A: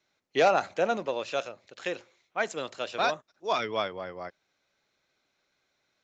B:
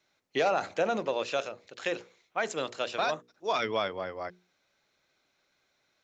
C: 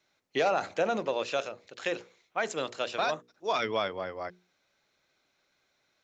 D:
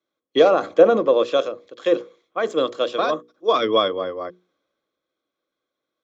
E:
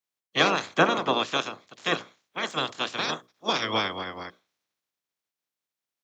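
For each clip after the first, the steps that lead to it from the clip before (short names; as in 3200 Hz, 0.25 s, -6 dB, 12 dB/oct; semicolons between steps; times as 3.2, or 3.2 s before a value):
notches 60/120/180/240/300/360/420/480 Hz; limiter -20 dBFS, peak gain reduction 8.5 dB; gain +2 dB
nothing audible
de-esser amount 70%; small resonant body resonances 320/480/1100/3300 Hz, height 17 dB, ringing for 25 ms; three-band expander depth 40%; gain -1 dB
spectral limiter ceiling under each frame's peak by 29 dB; HPF 100 Hz; gain -7.5 dB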